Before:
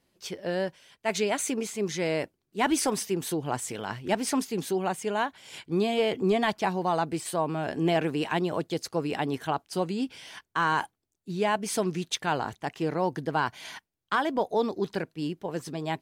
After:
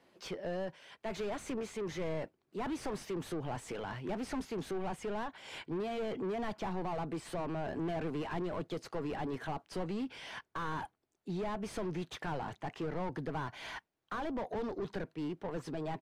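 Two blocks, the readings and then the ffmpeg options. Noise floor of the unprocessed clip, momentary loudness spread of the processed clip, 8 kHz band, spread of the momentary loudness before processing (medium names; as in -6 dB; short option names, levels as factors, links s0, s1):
-80 dBFS, 5 LU, -18.0 dB, 9 LU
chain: -filter_complex "[0:a]asplit=2[s0][s1];[s1]highpass=f=720:p=1,volume=20,asoftclip=type=tanh:threshold=0.178[s2];[s0][s2]amix=inputs=2:normalize=0,lowpass=f=1000:p=1,volume=0.501,aresample=32000,aresample=44100,acrossover=split=160[s3][s4];[s4]acompressor=threshold=0.00631:ratio=1.5[s5];[s3][s5]amix=inputs=2:normalize=0,volume=0.473"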